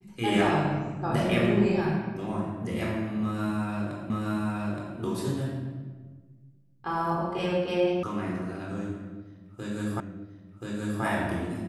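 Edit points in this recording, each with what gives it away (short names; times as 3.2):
4.1 repeat of the last 0.87 s
8.03 sound cut off
10 repeat of the last 1.03 s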